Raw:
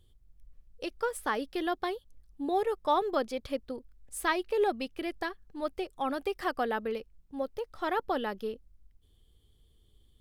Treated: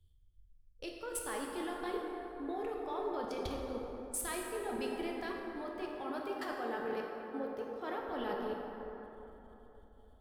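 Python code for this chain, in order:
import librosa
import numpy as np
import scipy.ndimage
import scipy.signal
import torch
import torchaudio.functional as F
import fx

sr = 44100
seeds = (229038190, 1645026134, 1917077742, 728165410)

y = fx.highpass(x, sr, hz=73.0, slope=12, at=(5.61, 7.98))
y = fx.level_steps(y, sr, step_db=21)
y = fx.rev_plate(y, sr, seeds[0], rt60_s=5.0, hf_ratio=0.4, predelay_ms=0, drr_db=-2.0)
y = fx.band_widen(y, sr, depth_pct=40)
y = y * 10.0 ** (1.0 / 20.0)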